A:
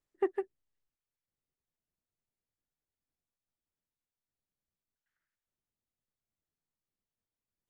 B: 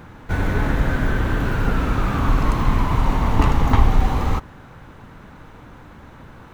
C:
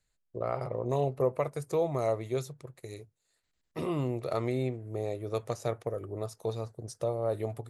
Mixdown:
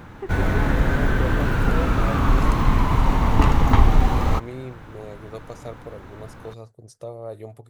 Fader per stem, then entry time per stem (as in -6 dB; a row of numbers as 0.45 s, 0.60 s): -3.5 dB, 0.0 dB, -4.0 dB; 0.00 s, 0.00 s, 0.00 s